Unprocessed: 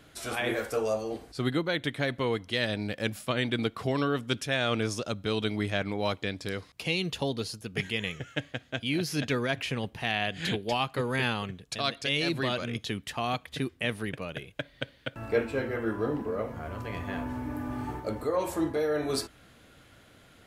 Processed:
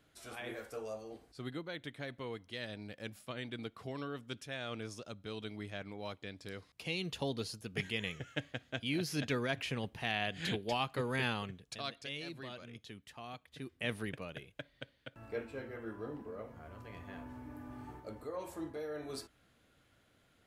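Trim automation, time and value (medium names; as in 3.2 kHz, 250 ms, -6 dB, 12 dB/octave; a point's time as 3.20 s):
6.19 s -14 dB
7.32 s -6 dB
11.38 s -6 dB
12.36 s -17 dB
13.53 s -17 dB
13.92 s -5 dB
14.93 s -13.5 dB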